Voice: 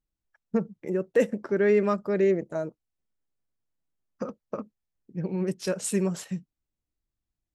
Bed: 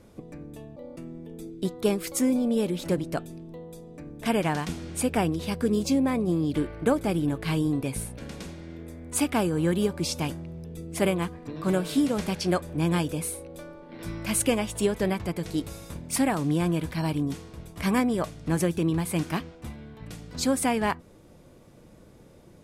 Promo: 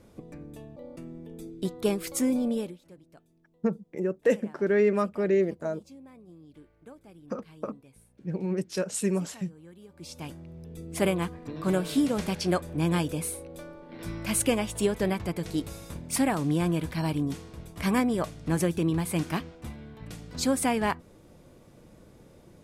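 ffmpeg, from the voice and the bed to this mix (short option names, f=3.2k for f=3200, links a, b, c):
-filter_complex "[0:a]adelay=3100,volume=-1dB[a];[1:a]volume=22.5dB,afade=t=out:st=2.48:d=0.3:silence=0.0668344,afade=t=in:st=9.87:d=1.16:silence=0.0595662[b];[a][b]amix=inputs=2:normalize=0"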